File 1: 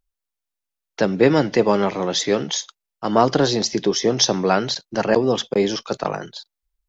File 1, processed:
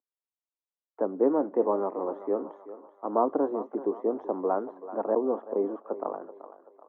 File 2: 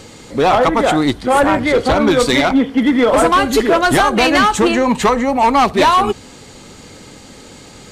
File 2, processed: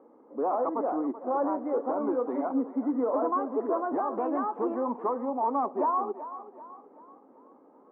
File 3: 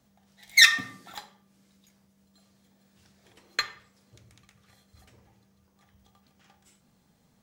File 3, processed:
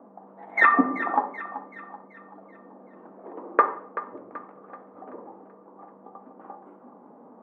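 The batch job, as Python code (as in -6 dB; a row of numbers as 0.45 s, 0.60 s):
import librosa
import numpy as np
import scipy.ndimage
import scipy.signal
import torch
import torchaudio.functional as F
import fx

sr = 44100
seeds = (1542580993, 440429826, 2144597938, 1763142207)

y = scipy.signal.sosfilt(scipy.signal.ellip(3, 1.0, 60, [260.0, 1100.0], 'bandpass', fs=sr, output='sos'), x)
y = fx.echo_thinned(y, sr, ms=382, feedback_pct=48, hz=410.0, wet_db=-12.5)
y = y * 10.0 ** (-30 / 20.0) / np.sqrt(np.mean(np.square(y)))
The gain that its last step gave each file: -7.5 dB, -14.5 dB, +23.0 dB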